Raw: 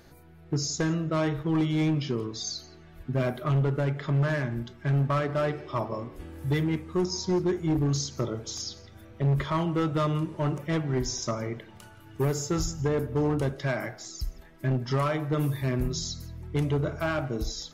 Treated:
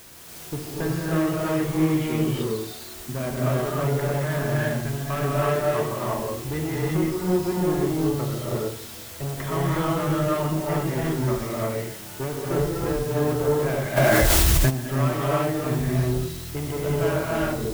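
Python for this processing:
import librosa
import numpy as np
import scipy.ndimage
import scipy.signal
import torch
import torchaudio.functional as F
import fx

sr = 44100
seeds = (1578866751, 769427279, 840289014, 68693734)

y = scipy.signal.sosfilt(scipy.signal.butter(4, 3000.0, 'lowpass', fs=sr, output='sos'), x)
y = fx.low_shelf(y, sr, hz=79.0, db=-4.5)
y = fx.tube_stage(y, sr, drive_db=25.0, bias=0.35)
y = fx.quant_dither(y, sr, seeds[0], bits=8, dither='triangular')
y = fx.rev_gated(y, sr, seeds[1], gate_ms=380, shape='rising', drr_db=-5.5)
y = fx.env_flatten(y, sr, amount_pct=100, at=(13.96, 14.69), fade=0.02)
y = F.gain(torch.from_numpy(y), 1.0).numpy()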